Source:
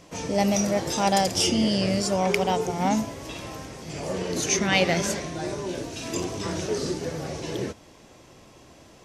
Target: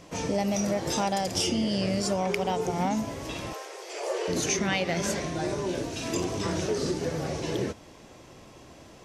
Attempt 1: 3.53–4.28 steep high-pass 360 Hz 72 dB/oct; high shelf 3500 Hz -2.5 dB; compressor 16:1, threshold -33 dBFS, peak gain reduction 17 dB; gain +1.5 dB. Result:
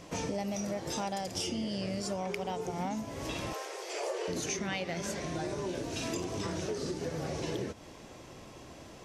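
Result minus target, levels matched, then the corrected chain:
compressor: peak gain reduction +8 dB
3.53–4.28 steep high-pass 360 Hz 72 dB/oct; high shelf 3500 Hz -2.5 dB; compressor 16:1, threshold -24.5 dBFS, peak gain reduction 9 dB; gain +1.5 dB

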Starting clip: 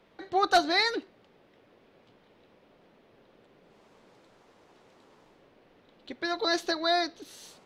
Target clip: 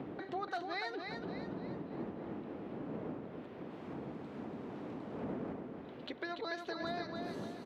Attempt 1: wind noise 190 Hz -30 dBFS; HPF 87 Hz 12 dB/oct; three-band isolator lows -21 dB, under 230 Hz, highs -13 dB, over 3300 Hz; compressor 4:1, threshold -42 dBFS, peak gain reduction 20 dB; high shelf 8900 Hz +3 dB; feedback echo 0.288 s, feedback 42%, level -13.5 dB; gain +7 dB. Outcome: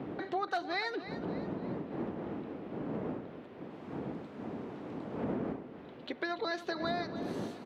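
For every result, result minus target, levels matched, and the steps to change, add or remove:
compressor: peak gain reduction -5.5 dB; echo-to-direct -8 dB
change: compressor 4:1, threshold -49.5 dBFS, peak gain reduction 25.5 dB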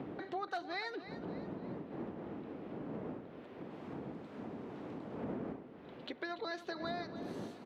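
echo-to-direct -8 dB
change: feedback echo 0.288 s, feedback 42%, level -5.5 dB

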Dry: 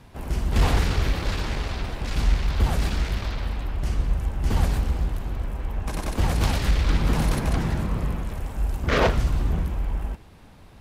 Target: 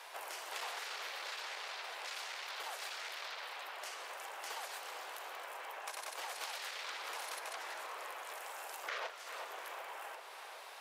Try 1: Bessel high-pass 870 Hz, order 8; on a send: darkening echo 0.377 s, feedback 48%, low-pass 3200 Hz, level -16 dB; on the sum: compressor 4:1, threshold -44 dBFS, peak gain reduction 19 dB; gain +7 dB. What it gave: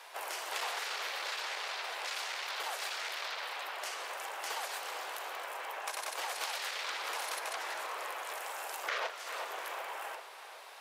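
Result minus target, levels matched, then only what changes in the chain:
compressor: peak gain reduction -5.5 dB
change: compressor 4:1, threshold -51.5 dBFS, peak gain reduction 25 dB

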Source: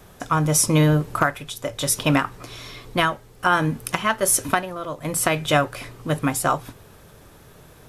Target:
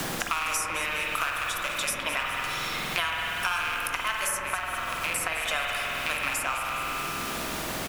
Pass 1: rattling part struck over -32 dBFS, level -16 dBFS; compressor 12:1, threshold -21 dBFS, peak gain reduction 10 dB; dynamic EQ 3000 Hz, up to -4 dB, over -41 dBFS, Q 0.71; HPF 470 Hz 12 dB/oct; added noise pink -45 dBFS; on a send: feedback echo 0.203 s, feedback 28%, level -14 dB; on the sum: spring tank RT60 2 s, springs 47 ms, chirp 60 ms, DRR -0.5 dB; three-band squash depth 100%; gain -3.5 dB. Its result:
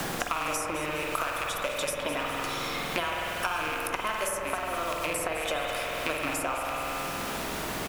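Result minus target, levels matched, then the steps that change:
compressor: peak gain reduction +10 dB; 500 Hz band +8.0 dB
change: HPF 1300 Hz 12 dB/oct; remove: compressor 12:1, threshold -21 dBFS, peak gain reduction 10 dB

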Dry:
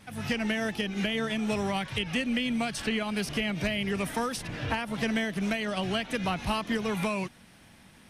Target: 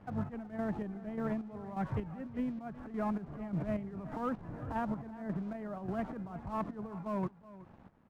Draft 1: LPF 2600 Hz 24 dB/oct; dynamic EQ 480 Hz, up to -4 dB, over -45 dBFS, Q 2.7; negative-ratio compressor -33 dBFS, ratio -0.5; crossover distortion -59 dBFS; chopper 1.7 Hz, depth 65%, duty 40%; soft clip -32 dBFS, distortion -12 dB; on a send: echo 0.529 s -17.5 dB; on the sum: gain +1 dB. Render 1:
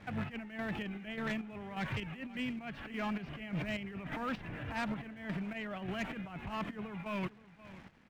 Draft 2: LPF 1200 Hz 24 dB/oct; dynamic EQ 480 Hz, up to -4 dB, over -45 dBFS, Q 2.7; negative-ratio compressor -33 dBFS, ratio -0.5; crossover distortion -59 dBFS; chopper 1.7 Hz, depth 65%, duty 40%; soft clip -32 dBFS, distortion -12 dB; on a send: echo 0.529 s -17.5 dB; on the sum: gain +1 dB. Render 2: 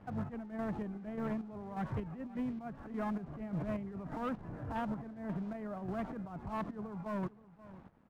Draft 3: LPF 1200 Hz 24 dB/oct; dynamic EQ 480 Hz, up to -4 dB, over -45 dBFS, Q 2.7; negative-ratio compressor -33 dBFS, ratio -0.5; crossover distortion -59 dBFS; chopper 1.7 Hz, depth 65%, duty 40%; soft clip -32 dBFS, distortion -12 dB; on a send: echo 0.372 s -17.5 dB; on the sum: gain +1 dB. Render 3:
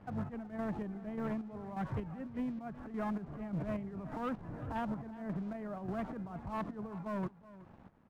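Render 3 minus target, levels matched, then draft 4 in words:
soft clip: distortion +8 dB
LPF 1200 Hz 24 dB/oct; dynamic EQ 480 Hz, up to -4 dB, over -45 dBFS, Q 2.7; negative-ratio compressor -33 dBFS, ratio -0.5; crossover distortion -59 dBFS; chopper 1.7 Hz, depth 65%, duty 40%; soft clip -26 dBFS, distortion -20 dB; on a send: echo 0.372 s -17.5 dB; on the sum: gain +1 dB

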